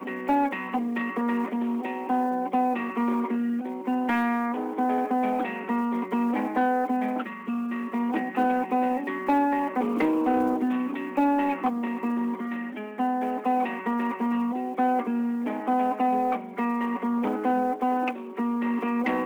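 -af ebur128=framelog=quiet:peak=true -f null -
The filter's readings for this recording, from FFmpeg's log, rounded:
Integrated loudness:
  I:         -26.6 LUFS
  Threshold: -36.6 LUFS
Loudness range:
  LRA:         2.0 LU
  Threshold: -46.5 LUFS
  LRA low:   -27.3 LUFS
  LRA high:  -25.3 LUFS
True peak:
  Peak:      -15.1 dBFS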